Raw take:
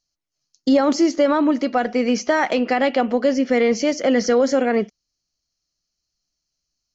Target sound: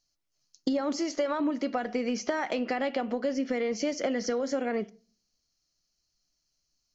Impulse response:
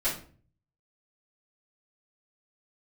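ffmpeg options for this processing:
-filter_complex "[0:a]asettb=1/sr,asplit=3[s0][s1][s2];[s0]atrim=end=0.994[s3];[s1]atrim=start=0.99:end=1.4,asetpts=PTS-STARTPTS,afade=t=in:d=0.004:c=qsin,afade=t=out:st=0.406:d=0.004:c=qsin,equalizer=f=220:t=o:w=1.2:g=-12[s4];[s2]atrim=start=1.396[s5];[s3][s4]acrossfade=d=0.004:c1=hsin:c2=qsin[s6];[s6][s5]acrossfade=d=0.004:c1=qsin:c2=hsin,acompressor=threshold=0.0501:ratio=12,asplit=2[s7][s8];[1:a]atrim=start_sample=2205[s9];[s8][s9]afir=irnorm=-1:irlink=0,volume=0.0631[s10];[s7][s10]amix=inputs=2:normalize=0"

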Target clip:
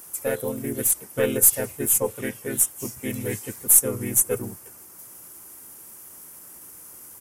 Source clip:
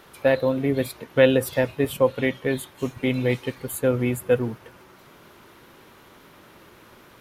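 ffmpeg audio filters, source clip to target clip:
-filter_complex "[0:a]aexciter=amount=14.6:drive=6.3:freq=6400,aeval=exprs='2*(cos(1*acos(clip(val(0)/2,-1,1)))-cos(1*PI/2))+0.0355*(cos(4*acos(clip(val(0)/2,-1,1)))-cos(4*PI/2))+0.02*(cos(8*acos(clip(val(0)/2,-1,1)))-cos(8*PI/2))':c=same,asplit=2[s0][s1];[s1]asetrate=37084,aresample=44100,atempo=1.18921,volume=0.891[s2];[s0][s2]amix=inputs=2:normalize=0,volume=0.355"

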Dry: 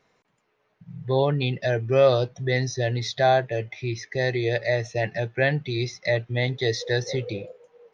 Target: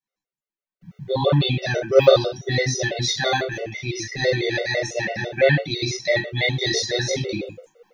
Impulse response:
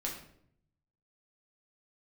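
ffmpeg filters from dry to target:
-filter_complex "[0:a]agate=range=0.0224:threshold=0.00316:ratio=3:detection=peak,crystalizer=i=3:c=0[s0];[1:a]atrim=start_sample=2205,atrim=end_sample=6174[s1];[s0][s1]afir=irnorm=-1:irlink=0,afftfilt=real='re*gt(sin(2*PI*6*pts/sr)*(1-2*mod(floor(b*sr/1024/380),2)),0)':imag='im*gt(sin(2*PI*6*pts/sr)*(1-2*mod(floor(b*sr/1024/380),2)),0)':win_size=1024:overlap=0.75,volume=1.5"

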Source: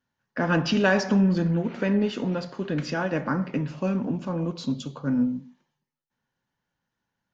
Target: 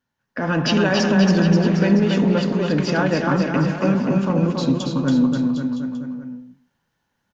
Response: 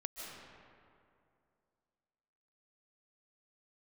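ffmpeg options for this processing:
-af "alimiter=limit=0.133:level=0:latency=1:release=51,aecho=1:1:280|532|758.8|962.9|1147:0.631|0.398|0.251|0.158|0.1,dynaudnorm=f=130:g=7:m=1.88,volume=1.19"

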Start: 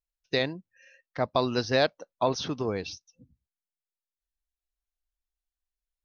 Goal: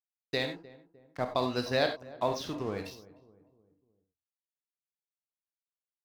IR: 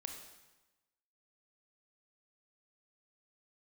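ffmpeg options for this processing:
-filter_complex "[0:a]aeval=exprs='sgn(val(0))*max(abs(val(0))-0.00794,0)':c=same,asplit=2[s0][s1];[s1]adelay=304,lowpass=f=920:p=1,volume=0.126,asplit=2[s2][s3];[s3]adelay=304,lowpass=f=920:p=1,volume=0.48,asplit=2[s4][s5];[s5]adelay=304,lowpass=f=920:p=1,volume=0.48,asplit=2[s6][s7];[s7]adelay=304,lowpass=f=920:p=1,volume=0.48[s8];[s0][s2][s4][s6][s8]amix=inputs=5:normalize=0[s9];[1:a]atrim=start_sample=2205,afade=t=out:st=0.15:d=0.01,atrim=end_sample=7056[s10];[s9][s10]afir=irnorm=-1:irlink=0"

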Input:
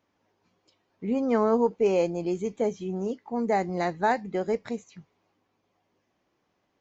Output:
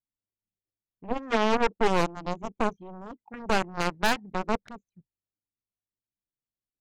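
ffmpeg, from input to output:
-af "anlmdn=0.631,aeval=exprs='0.266*(cos(1*acos(clip(val(0)/0.266,-1,1)))-cos(1*PI/2))+0.0422*(cos(3*acos(clip(val(0)/0.266,-1,1)))-cos(3*PI/2))+0.106*(cos(6*acos(clip(val(0)/0.266,-1,1)))-cos(6*PI/2))+0.0335*(cos(7*acos(clip(val(0)/0.266,-1,1)))-cos(7*PI/2))+0.0596*(cos(8*acos(clip(val(0)/0.266,-1,1)))-cos(8*PI/2))':c=same,aeval=exprs='0.596*sin(PI/2*2.24*val(0)/0.596)':c=same,volume=0.398"

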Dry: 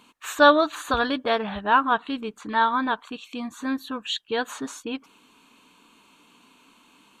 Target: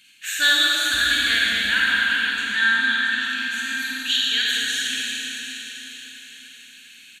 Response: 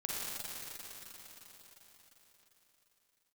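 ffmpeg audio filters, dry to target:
-filter_complex "[0:a]firequalizer=gain_entry='entry(120,0);entry(430,-18);entry(1100,-21);entry(1600,13)':delay=0.05:min_phase=1[s0];[1:a]atrim=start_sample=2205[s1];[s0][s1]afir=irnorm=-1:irlink=0,volume=0.596"

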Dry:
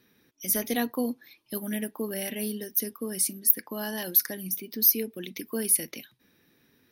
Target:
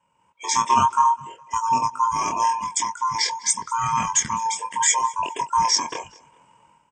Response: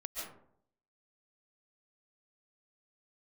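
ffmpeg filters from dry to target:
-filter_complex "[0:a]afftfilt=real='real(if(lt(b,272),68*(eq(floor(b/68),0)*1+eq(floor(b/68),1)*0+eq(floor(b/68),2)*3+eq(floor(b/68),3)*2)+mod(b,68),b),0)':imag='imag(if(lt(b,272),68*(eq(floor(b/68),0)*1+eq(floor(b/68),1)*0+eq(floor(b/68),2)*3+eq(floor(b/68),3)*2)+mod(b,68),b),0)':win_size=2048:overlap=0.75,highshelf=f=4800:g=-11,flanger=delay=22.5:depth=2.4:speed=0.77,highpass=f=280:p=1,asetrate=24046,aresample=44100,atempo=1.83401,dynaudnorm=f=150:g=5:m=4.73,equalizer=f=380:t=o:w=1.4:g=-4,asplit=2[s0][s1];[s1]aecho=0:1:206|412:0.075|0.0262[s2];[s0][s2]amix=inputs=2:normalize=0,volume=1.33"

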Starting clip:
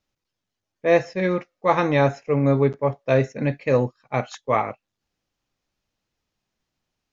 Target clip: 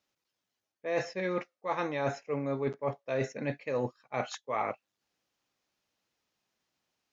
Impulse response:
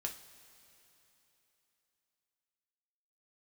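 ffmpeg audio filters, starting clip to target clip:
-af "highpass=f=340:p=1,areverse,acompressor=threshold=0.0355:ratio=6,areverse"

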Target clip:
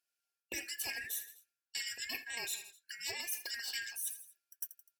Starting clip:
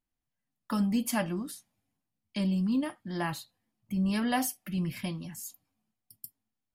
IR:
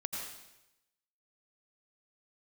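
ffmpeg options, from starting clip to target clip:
-filter_complex "[0:a]afftfilt=real='real(if(lt(b,960),b+48*(1-2*mod(floor(b/48),2)),b),0)':imag='imag(if(lt(b,960),b+48*(1-2*mod(floor(b/48),2)),b),0)':win_size=2048:overlap=0.75,equalizer=f=125:t=o:w=1:g=-12,equalizer=f=250:t=o:w=1:g=6,equalizer=f=500:t=o:w=1:g=9,equalizer=f=1000:t=o:w=1:g=-5,equalizer=f=2000:t=o:w=1:g=10,equalizer=f=4000:t=o:w=1:g=8,equalizer=f=8000:t=o:w=1:g=10,asetrate=59535,aresample=44100,agate=range=0.282:threshold=0.00891:ratio=16:detection=peak,alimiter=limit=0.133:level=0:latency=1:release=153,equalizer=f=1100:t=o:w=2:g=-9.5,asplit=2[s0][s1];[s1]aecho=0:1:84|168|252:0.0944|0.0434|0.02[s2];[s0][s2]amix=inputs=2:normalize=0,afftfilt=real='re*lt(hypot(re,im),0.126)':imag='im*lt(hypot(re,im),0.126)':win_size=1024:overlap=0.75,areverse,acompressor=threshold=0.00501:ratio=5,areverse,highpass=72,volume=2.37"

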